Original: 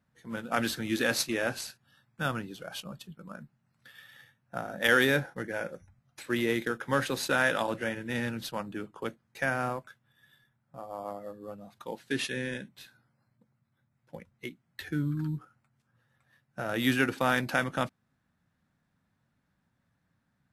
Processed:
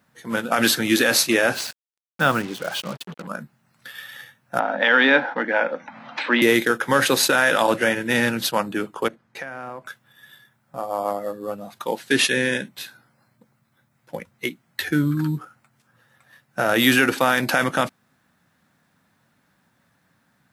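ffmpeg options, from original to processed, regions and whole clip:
-filter_complex "[0:a]asettb=1/sr,asplit=3[a][b][c];[a]atrim=end=1.544[d];[b]atrim=start=1.54:end=3.27,asetpts=PTS-STARTPTS,afade=t=in:d=0.004:c=qsin,afade=t=out:st=1.726:d=0.004:c=qsin,highpass=f=63:w=0.5412,highpass=f=63:w=1.3066,aemphasis=mode=reproduction:type=50fm,acrusher=bits=7:mix=0:aa=0.5[e];[c]atrim=start=3.266[f];[d][e]acrossfade=d=0.004:c1=hsin:c2=qsin[g];[g][f]acrossfade=d=0.004:c1=qsin:c2=hsin,asettb=1/sr,asplit=3[h][i][j];[h]atrim=end=4.594[k];[i]atrim=start=4.59:end=6.42,asetpts=PTS-STARTPTS,afade=t=in:d=0.004:c=qsin,afade=t=out:st=1.826:d=0.004:c=qsin,highpass=f=240:w=0.5412,highpass=f=240:w=1.3066,equalizer=f=250:t=q:w=4:g=5,equalizer=f=380:t=q:w=4:g=-10,equalizer=f=900:t=q:w=4:g=7,lowpass=f=3.6k:w=0.5412,lowpass=f=3.6k:w=1.3066,acompressor=mode=upward:threshold=-32dB:ratio=2.5:attack=3.2:release=140:knee=2.83:detection=peak[l];[j]atrim=start=6.416[m];[k][l]acrossfade=d=0.004:c1=hsin:c2=qsin[n];[n][m]acrossfade=d=0.004:c1=qsin:c2=hsin,asettb=1/sr,asplit=3[o][p][q];[o]atrim=end=9.084[r];[p]atrim=start=9.08:end=9.86,asetpts=PTS-STARTPTS,afade=t=in:d=0.004:c=qsin,afade=t=out:st=0.776:d=0.004:c=qsin,acompressor=threshold=-41dB:ratio=16:attack=3.2:release=140:knee=1:detection=peak,lowpass=f=2.3k:p=1[s];[q]atrim=start=9.856[t];[r][s]acrossfade=d=0.004:c1=hsin:c2=qsin[u];[u][t]acrossfade=d=0.004:c1=qsin:c2=hsin,highpass=f=290:p=1,highshelf=f=9.5k:g=4.5,alimiter=level_in=19.5dB:limit=-1dB:release=50:level=0:latency=1,volume=-5dB"

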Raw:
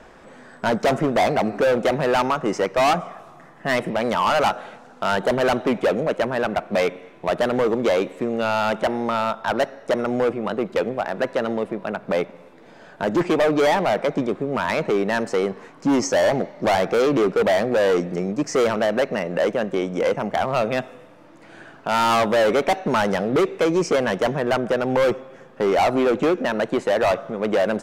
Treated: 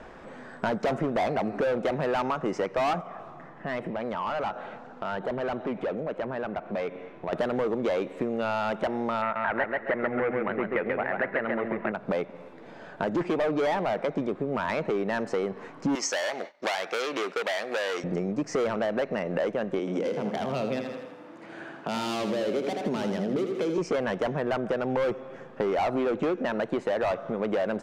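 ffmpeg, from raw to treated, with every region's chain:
-filter_complex "[0:a]asettb=1/sr,asplit=3[a][b][c];[a]atrim=end=3.014[d];[b]atrim=start=3.01:end=7.33,asetpts=PTS-STARTPTS,afade=t=in:d=0.004:c=qsin,afade=t=out:st=4.316:d=0.004:c=qsin,acompressor=threshold=-36dB:ratio=2:attack=3.2:release=140:knee=1:detection=peak,lowpass=f=3.1k:p=1[e];[c]atrim=start=7.326[f];[d][e]acrossfade=d=0.004:c1=hsin:c2=qsin[g];[g][f]acrossfade=d=0.004:c1=qsin:c2=hsin,asettb=1/sr,asplit=3[h][i][j];[h]atrim=end=9.224[k];[i]atrim=start=9.22:end=11.92,asetpts=PTS-STARTPTS,afade=t=in:d=0.004:c=qsin,afade=t=out:st=2.696:d=0.004:c=qsin,lowpass=f=2k:t=q:w=4.7,aecho=1:1:135|270|405:0.631|0.145|0.0334,atrim=end_sample=119070[l];[j]atrim=start=11.916[m];[k][l]acrossfade=d=0.004:c1=hsin:c2=qsin[n];[n][m]acrossfade=d=0.004:c1=qsin:c2=hsin,asettb=1/sr,asplit=3[o][p][q];[o]atrim=end=15.954[r];[p]atrim=start=15.95:end=18.04,asetpts=PTS-STARTPTS,afade=t=in:d=0.004:c=qsin,afade=t=out:st=2.086:d=0.004:c=qsin,highpass=320,agate=range=-33dB:threshold=-32dB:ratio=3:release=100:detection=peak,tiltshelf=f=1.2k:g=-9.5[s];[q]atrim=start=18.036[t];[r][s]acrossfade=d=0.004:c1=hsin:c2=qsin[u];[u][t]acrossfade=d=0.004:c1=qsin:c2=hsin,asettb=1/sr,asplit=3[v][w][x];[v]atrim=end=19.794[y];[w]atrim=start=19.79:end=23.78,asetpts=PTS-STARTPTS,afade=t=in:d=0.004:c=qsin,afade=t=out:st=3.986:d=0.004:c=qsin,highpass=160,acrossover=split=450|3000[z][aa][ab];[aa]acompressor=threshold=-33dB:ratio=6:attack=3.2:release=140:knee=2.83:detection=peak[ac];[z][ac][ab]amix=inputs=3:normalize=0,aecho=1:1:81|162|243|324|405|486:0.447|0.228|0.116|0.0593|0.0302|0.0154,atrim=end_sample=175959[ad];[x]atrim=start=23.776[ae];[y][ad]acrossfade=d=0.004:c1=hsin:c2=qsin[af];[af][ae]acrossfade=d=0.004:c1=qsin:c2=hsin,lowpass=f=3.1k:p=1,acompressor=threshold=-27dB:ratio=4,volume=1dB"

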